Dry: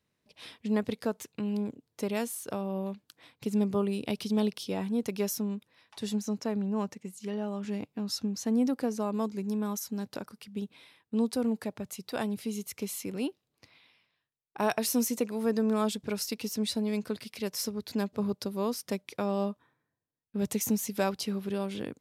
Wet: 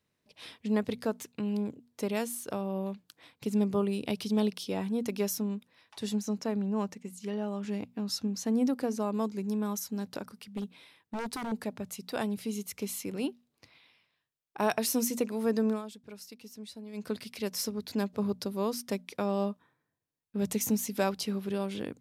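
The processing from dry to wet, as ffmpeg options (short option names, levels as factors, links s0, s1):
-filter_complex "[0:a]asettb=1/sr,asplit=3[s0][s1][s2];[s0]atrim=end=10.574[s3];[s1]atrim=start=10.57:end=11.52,asetpts=PTS-STARTPTS,afade=t=in:d=0.004:c=qsin,afade=t=out:st=0.946:d=0.004:c=qsin,aeval=exprs='0.0355*(abs(mod(val(0)/0.0355+3,4)-2)-1)':c=same[s4];[s2]atrim=start=11.516[s5];[s3][s4]acrossfade=d=0.004:c1=hsin:c2=qsin[s6];[s6][s5]acrossfade=d=0.004:c1=qsin:c2=hsin,asplit=3[s7][s8][s9];[s7]atrim=end=15.82,asetpts=PTS-STARTPTS,afade=t=out:st=15.68:d=0.14:silence=0.199526[s10];[s8]atrim=start=15.82:end=16.93,asetpts=PTS-STARTPTS,volume=0.2[s11];[s9]atrim=start=16.93,asetpts=PTS-STARTPTS,afade=t=in:d=0.14:silence=0.199526[s12];[s10][s11][s12]concat=n=3:v=0:a=1,bandreject=f=60:t=h:w=6,bandreject=f=120:t=h:w=6,bandreject=f=180:t=h:w=6,bandreject=f=240:t=h:w=6"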